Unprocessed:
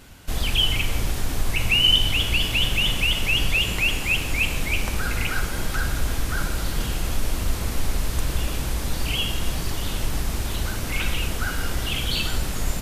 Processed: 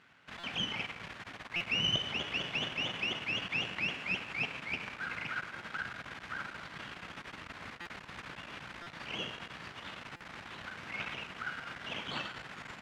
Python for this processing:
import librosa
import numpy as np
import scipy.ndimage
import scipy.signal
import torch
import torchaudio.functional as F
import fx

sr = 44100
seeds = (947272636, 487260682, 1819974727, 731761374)

y = fx.tilt_shelf(x, sr, db=-8.5, hz=1200.0)
y = np.maximum(y, 0.0)
y = scipy.signal.sosfilt(scipy.signal.cheby1(2, 1.0, [160.0, 1800.0], 'bandpass', fs=sr, output='sos'), y)
y = fx.peak_eq(y, sr, hz=380.0, db=-3.5, octaves=1.6)
y = fx.buffer_glitch(y, sr, at_s=(0.39, 1.56, 7.81, 8.82, 10.16), block=256, repeats=7)
y = F.gain(torch.from_numpy(y), -4.5).numpy()